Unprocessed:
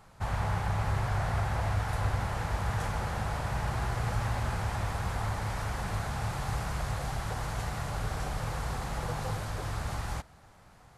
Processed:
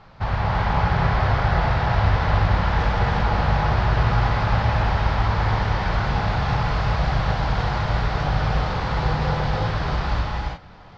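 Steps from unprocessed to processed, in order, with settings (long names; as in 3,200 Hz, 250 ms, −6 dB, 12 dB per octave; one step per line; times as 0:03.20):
Butterworth low-pass 5,000 Hz 36 dB per octave
reverb whose tail is shaped and stops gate 380 ms rising, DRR −1 dB
level +8 dB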